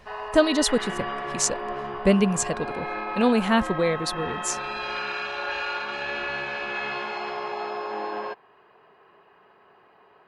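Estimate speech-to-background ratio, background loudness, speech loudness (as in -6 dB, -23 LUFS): 7.0 dB, -31.0 LUFS, -24.0 LUFS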